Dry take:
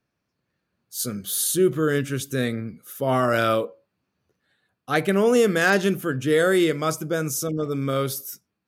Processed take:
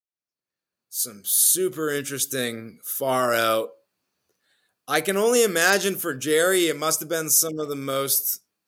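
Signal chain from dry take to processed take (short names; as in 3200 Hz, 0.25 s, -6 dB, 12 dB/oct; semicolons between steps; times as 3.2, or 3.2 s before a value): opening faded in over 2.36 s; tone controls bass -11 dB, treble +11 dB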